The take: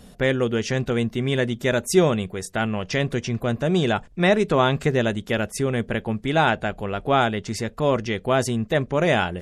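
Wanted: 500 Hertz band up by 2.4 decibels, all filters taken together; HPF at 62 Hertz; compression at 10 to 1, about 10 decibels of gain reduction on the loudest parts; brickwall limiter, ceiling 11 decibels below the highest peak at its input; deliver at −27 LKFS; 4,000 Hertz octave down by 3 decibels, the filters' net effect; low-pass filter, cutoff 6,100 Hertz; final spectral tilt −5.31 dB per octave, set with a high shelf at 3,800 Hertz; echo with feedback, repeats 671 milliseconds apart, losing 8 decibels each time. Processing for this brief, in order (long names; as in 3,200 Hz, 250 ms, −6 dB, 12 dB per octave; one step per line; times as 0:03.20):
high-pass filter 62 Hz
low-pass filter 6,100 Hz
parametric band 500 Hz +3 dB
high-shelf EQ 3,800 Hz +7 dB
parametric band 4,000 Hz −7.5 dB
downward compressor 10 to 1, threshold −20 dBFS
brickwall limiter −23 dBFS
repeating echo 671 ms, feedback 40%, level −8 dB
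level +5 dB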